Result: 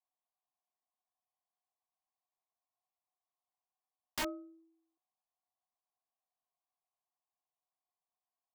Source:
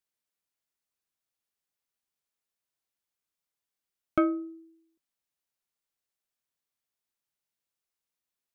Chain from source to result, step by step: cascade formant filter a; integer overflow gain 41 dB; trim +11.5 dB

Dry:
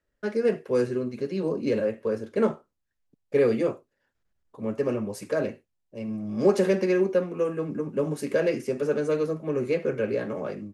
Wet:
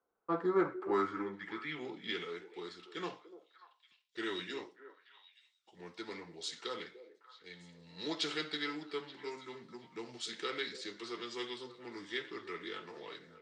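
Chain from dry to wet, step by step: band-pass sweep 880 Hz -> 4.5 kHz, 0.07–1.90 s; tape speed -20%; repeats whose band climbs or falls 293 ms, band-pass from 450 Hz, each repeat 1.4 oct, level -11 dB; trim +8 dB

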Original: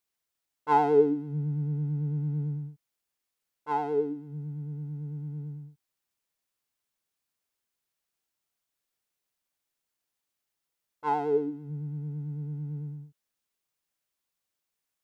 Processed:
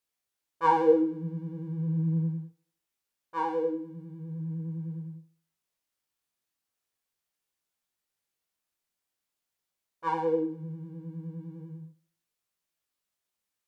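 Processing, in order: tape echo 84 ms, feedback 43%, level -17 dB; tape speed +10%; chorus 0.4 Hz, delay 17.5 ms, depth 4.9 ms; trim +2.5 dB

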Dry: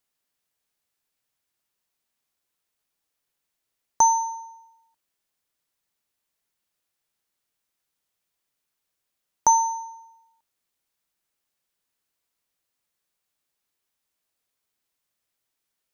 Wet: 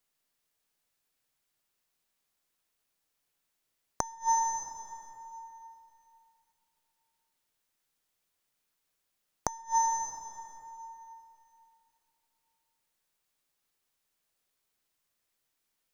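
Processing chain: partial rectifier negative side -3 dB; plate-style reverb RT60 3 s, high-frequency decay 0.75×, pre-delay 95 ms, DRR 7.5 dB; inverted gate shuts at -16 dBFS, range -26 dB; trim +1 dB

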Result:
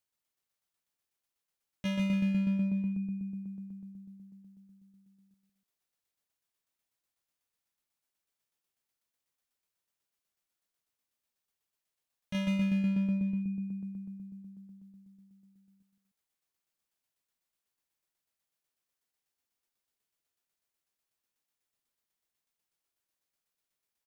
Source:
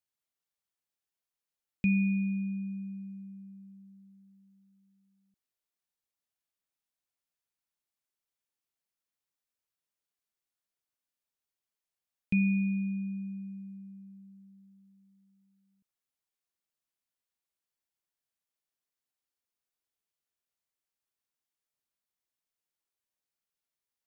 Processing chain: hard clipper -33 dBFS, distortion -6 dB; loudspeakers at several distances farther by 53 m -5 dB, 100 m -10 dB; tremolo saw down 8.1 Hz, depth 50%; trim +4.5 dB

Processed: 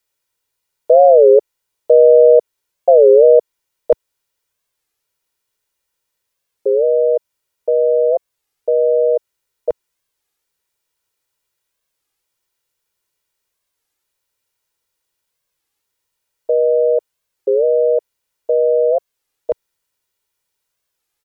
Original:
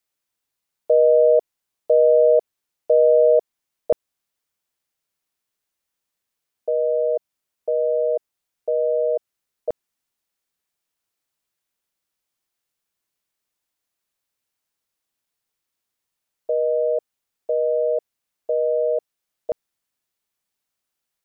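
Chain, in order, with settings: comb 2.1 ms, depth 49%; dynamic bell 110 Hz, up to -8 dB, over -41 dBFS, Q 1.3; warped record 33 1/3 rpm, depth 250 cents; trim +5 dB

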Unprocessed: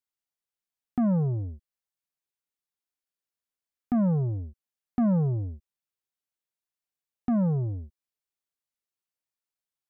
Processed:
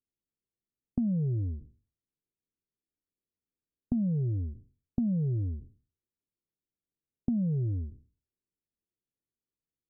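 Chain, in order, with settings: spectral sustain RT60 0.39 s; inverse Chebyshev low-pass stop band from 1.1 kHz, stop band 50 dB; compression, threshold -35 dBFS, peak gain reduction 13 dB; trim +7 dB

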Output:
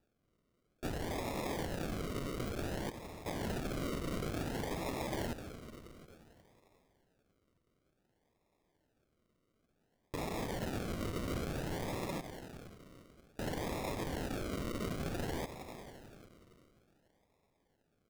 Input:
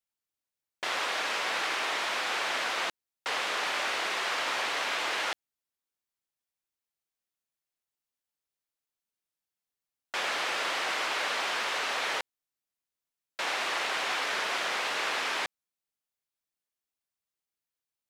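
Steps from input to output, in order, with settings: high-pass 260 Hz; static phaser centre 1.1 kHz, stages 4; on a send: feedback echo behind a high-pass 90 ms, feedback 81%, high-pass 2.6 kHz, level -13.5 dB; on the sum: peak limiter -30 dBFS, peak gain reduction 7.5 dB; treble shelf 4.5 kHz +11.5 dB; in parallel at +1.5 dB: compression, threshold -47 dBFS, peak gain reduction 13 dB; on the sum: band-stop 1.5 kHz; decimation with a swept rate 41×, swing 60% 0.56 Hz; trim -3.5 dB

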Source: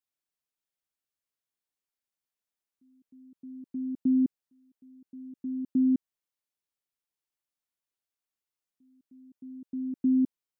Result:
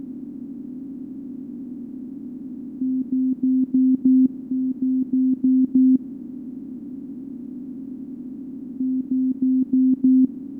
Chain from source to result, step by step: spectral levelling over time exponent 0.2; trim +8 dB

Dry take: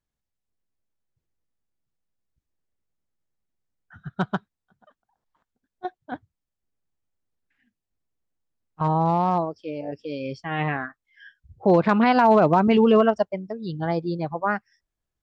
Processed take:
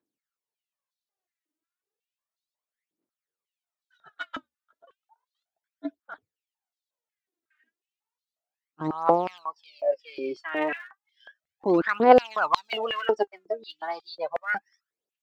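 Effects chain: phaser 0.33 Hz, delay 3.3 ms, feedback 75%; 4.18–6.14 s: frequency shift -76 Hz; step-sequenced high-pass 5.5 Hz 310–3900 Hz; trim -7.5 dB

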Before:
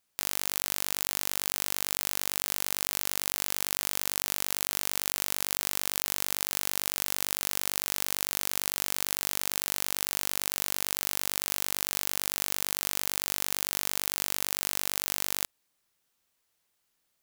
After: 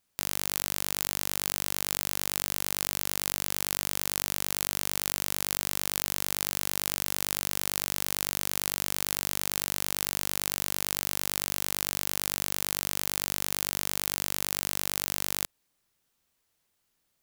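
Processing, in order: bass shelf 300 Hz +6.5 dB

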